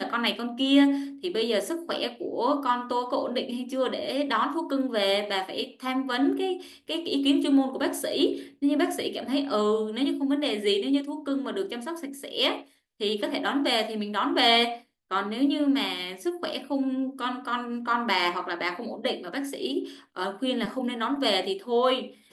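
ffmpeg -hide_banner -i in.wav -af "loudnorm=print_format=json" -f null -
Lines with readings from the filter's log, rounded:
"input_i" : "-26.9",
"input_tp" : "-8.5",
"input_lra" : "3.2",
"input_thresh" : "-37.1",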